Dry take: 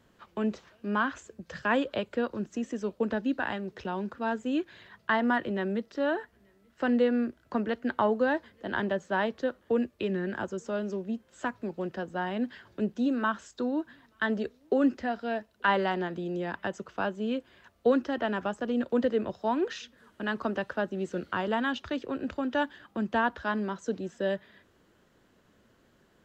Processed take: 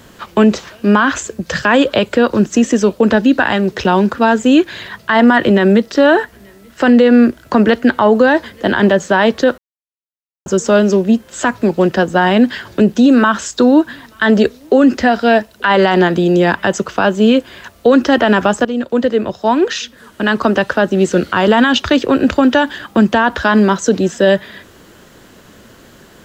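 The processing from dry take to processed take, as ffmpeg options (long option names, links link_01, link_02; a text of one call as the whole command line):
ffmpeg -i in.wav -filter_complex "[0:a]asplit=4[link_01][link_02][link_03][link_04];[link_01]atrim=end=9.58,asetpts=PTS-STARTPTS,afade=type=out:start_time=9.576:duration=0.004:curve=hsin[link_05];[link_02]atrim=start=9.58:end=10.46,asetpts=PTS-STARTPTS,volume=0[link_06];[link_03]atrim=start=10.46:end=18.65,asetpts=PTS-STARTPTS,afade=type=in:duration=0.004:curve=hsin,afade=type=out:start_time=8.186:duration=0.004:curve=hsin:silence=0.237137[link_07];[link_04]atrim=start=18.65,asetpts=PTS-STARTPTS,afade=type=in:duration=2.79:silence=0.237137[link_08];[link_05][link_06][link_07][link_08]concat=n=4:v=0:a=1,highshelf=frequency=4200:gain=7.5,alimiter=level_in=22.5dB:limit=-1dB:release=50:level=0:latency=1,volume=-1dB" out.wav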